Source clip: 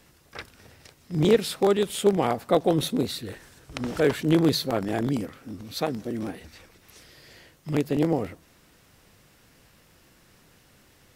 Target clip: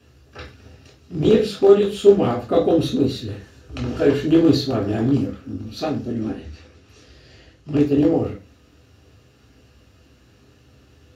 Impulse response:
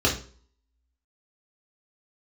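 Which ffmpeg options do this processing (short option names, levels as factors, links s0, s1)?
-filter_complex "[0:a]asettb=1/sr,asplit=3[s0][s1][s2];[s0]atrim=end=6.104[s3];[s1]atrim=start=6.1:end=7.8,asetpts=PTS-STARTPTS,afade=t=in:d=0.004:c=qsin,afade=t=out:st=1.696:d=0.004:c=qsin,lowpass=10000[s4];[s2]atrim=start=7.796[s5];[s3][s4]acrossfade=d=0.004:c1=hsin:c2=qsin[s6];[s6][s5]acrossfade=d=0.004:c1=qsin:c2=hsin[s7];[1:a]atrim=start_sample=2205,atrim=end_sample=6615[s8];[s7][s8]afir=irnorm=-1:irlink=0,volume=0.211"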